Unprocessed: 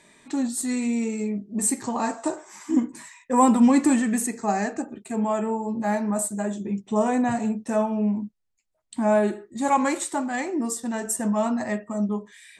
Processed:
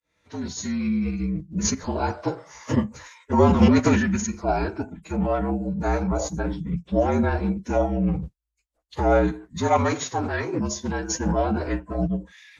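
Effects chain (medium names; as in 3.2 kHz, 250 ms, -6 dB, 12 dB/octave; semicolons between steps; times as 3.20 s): fade-in on the opening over 0.93 s; formant-preserving pitch shift -9.5 st; frequency shift -55 Hz; trim +1.5 dB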